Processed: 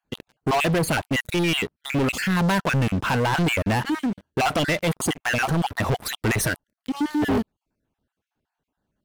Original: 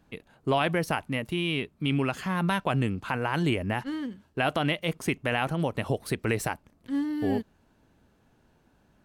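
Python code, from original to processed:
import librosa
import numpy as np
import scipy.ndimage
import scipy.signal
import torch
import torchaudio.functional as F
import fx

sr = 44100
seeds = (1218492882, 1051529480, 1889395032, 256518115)

y = fx.spec_dropout(x, sr, seeds[0], share_pct=35)
y = fx.leveller(y, sr, passes=5)
y = y * librosa.db_to_amplitude(-3.5)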